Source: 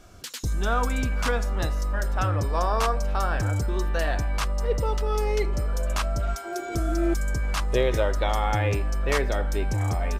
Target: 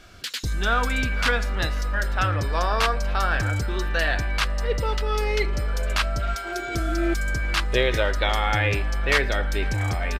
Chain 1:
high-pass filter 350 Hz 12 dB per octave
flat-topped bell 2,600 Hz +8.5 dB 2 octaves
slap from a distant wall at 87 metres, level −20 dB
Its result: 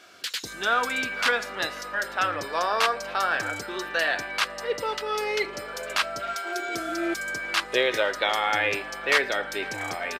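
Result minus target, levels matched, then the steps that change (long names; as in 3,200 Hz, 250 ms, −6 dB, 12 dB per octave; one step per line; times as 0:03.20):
250 Hz band −2.5 dB
remove: high-pass filter 350 Hz 12 dB per octave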